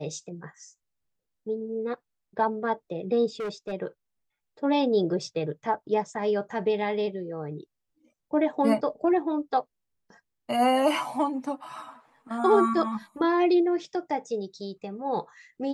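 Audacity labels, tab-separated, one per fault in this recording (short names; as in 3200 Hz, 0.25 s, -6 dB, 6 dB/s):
3.400000	3.730000	clipped -29 dBFS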